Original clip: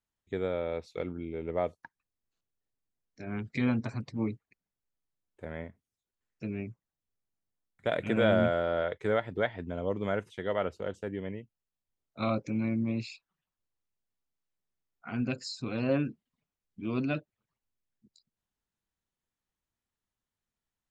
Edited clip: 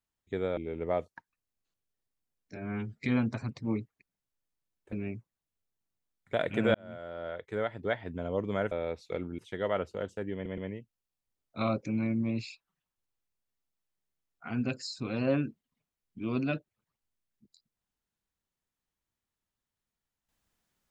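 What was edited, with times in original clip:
0.57–1.24 move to 10.24
3.23–3.54 stretch 1.5×
5.44–6.45 cut
8.27–9.67 fade in
11.19 stutter 0.12 s, 3 plays

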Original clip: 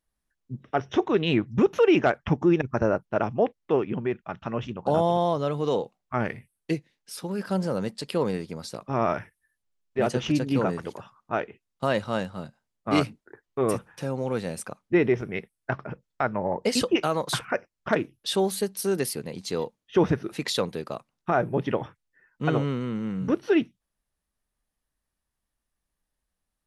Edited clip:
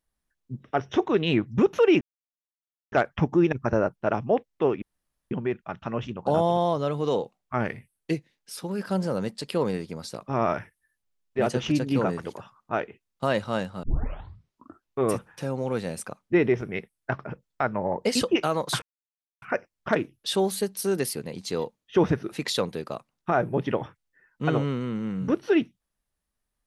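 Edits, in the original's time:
2.01 insert silence 0.91 s
3.91 insert room tone 0.49 s
12.43 tape start 1.16 s
17.42 insert silence 0.60 s

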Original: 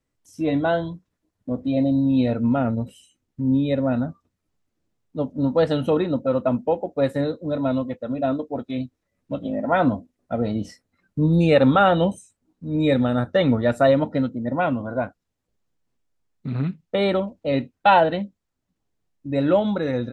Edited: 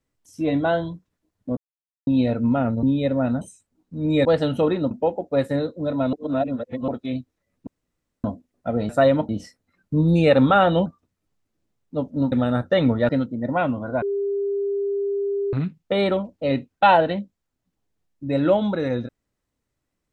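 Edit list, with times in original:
1.57–2.07 mute
2.83–3.5 cut
4.08–5.54 swap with 12.11–12.95
6.2–6.56 cut
7.78–8.53 reverse
9.32–9.89 room tone
13.72–14.12 move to 10.54
15.05–16.56 bleep 400 Hz -21 dBFS

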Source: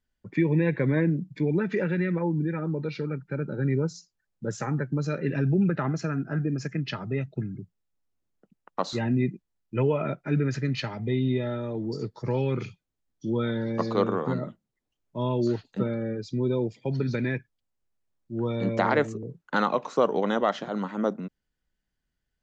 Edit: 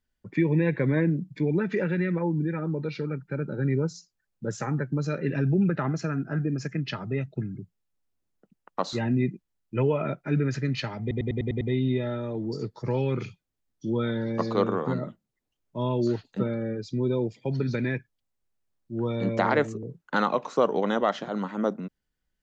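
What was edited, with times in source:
11.01 stutter 0.10 s, 7 plays

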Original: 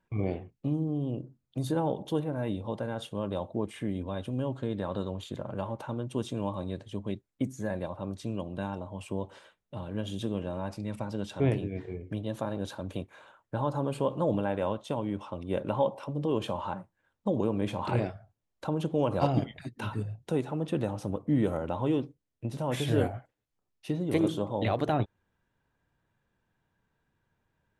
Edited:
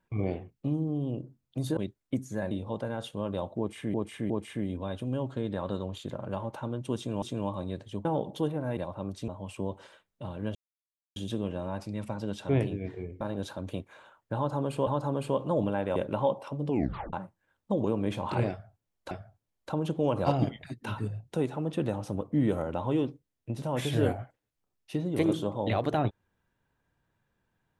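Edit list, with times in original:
1.77–2.49 swap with 7.05–7.79
3.56–3.92 loop, 3 plays
6.22–6.48 loop, 2 plays
8.3–8.8 cut
10.07 insert silence 0.61 s
12.12–12.43 cut
13.58–14.09 loop, 2 plays
14.67–15.52 cut
16.23 tape stop 0.46 s
18.06–18.67 loop, 2 plays

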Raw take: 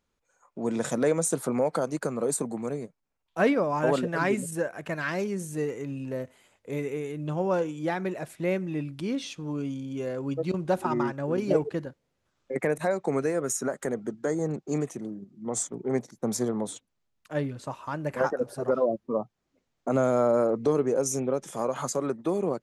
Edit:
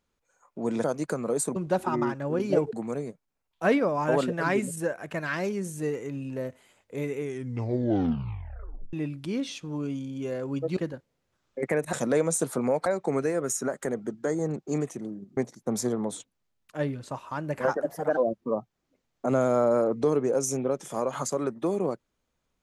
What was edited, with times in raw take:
0.84–1.77 move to 12.86
6.94 tape stop 1.74 s
10.53–11.71 move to 2.48
15.37–15.93 cut
18.38–18.8 speed 119%

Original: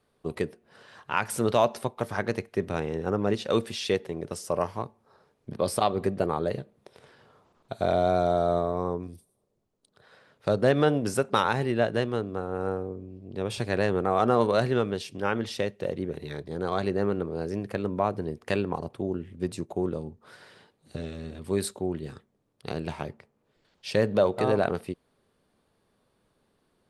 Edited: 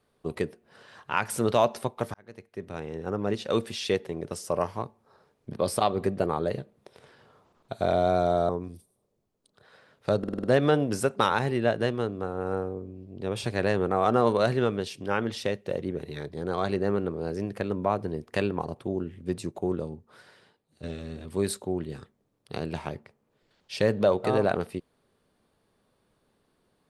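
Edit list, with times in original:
2.14–4.23 fade in equal-power
8.49–8.88 cut
10.58 stutter 0.05 s, 6 plays
19.93–20.97 fade out, to -11.5 dB

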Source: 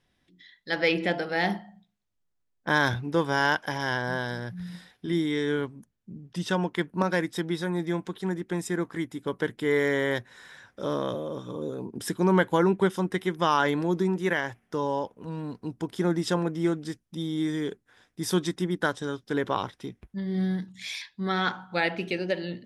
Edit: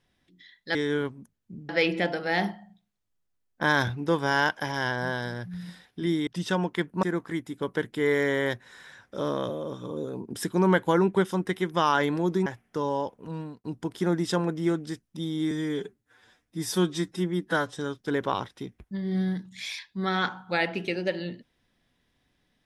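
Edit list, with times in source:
5.33–6.27 move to 0.75
7.03–8.68 cut
14.11–14.44 cut
15.36–15.62 fade out
17.49–18.99 stretch 1.5×

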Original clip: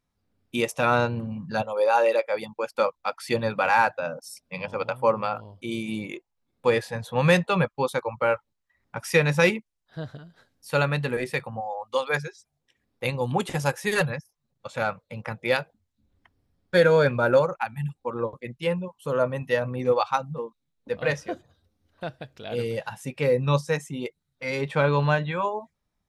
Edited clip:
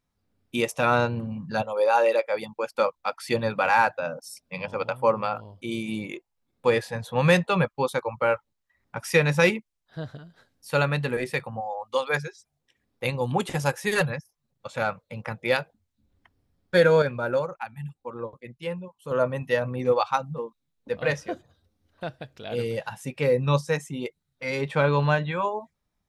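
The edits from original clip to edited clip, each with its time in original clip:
17.02–19.11 gain -6 dB

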